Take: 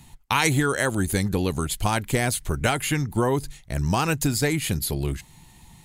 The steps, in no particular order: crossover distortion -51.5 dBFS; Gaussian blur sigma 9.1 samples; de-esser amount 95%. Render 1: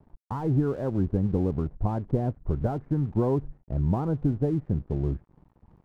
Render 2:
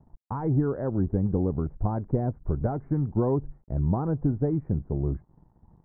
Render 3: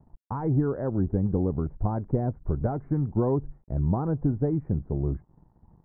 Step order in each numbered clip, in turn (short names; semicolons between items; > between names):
de-esser > Gaussian blur > crossover distortion; de-esser > crossover distortion > Gaussian blur; crossover distortion > de-esser > Gaussian blur